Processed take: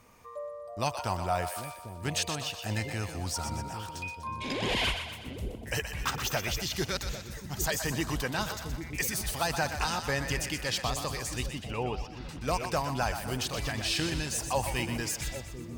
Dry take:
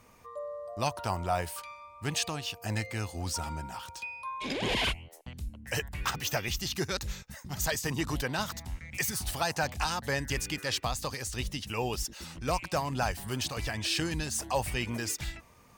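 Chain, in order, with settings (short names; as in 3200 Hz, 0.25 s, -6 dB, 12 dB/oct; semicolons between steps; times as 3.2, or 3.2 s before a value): 11.46–12.29 air absorption 280 m; split-band echo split 550 Hz, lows 0.798 s, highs 0.123 s, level -8 dB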